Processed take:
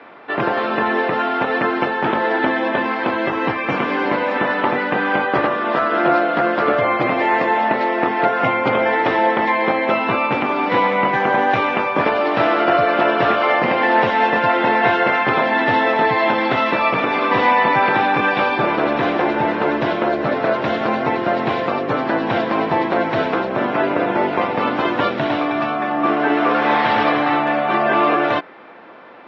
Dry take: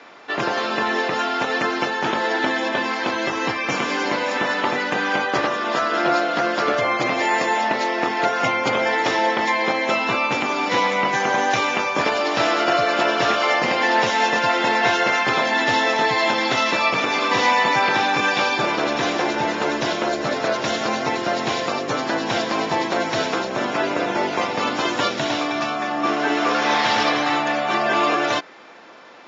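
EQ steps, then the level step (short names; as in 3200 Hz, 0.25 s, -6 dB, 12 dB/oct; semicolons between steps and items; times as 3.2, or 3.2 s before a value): air absorption 450 m; +5.5 dB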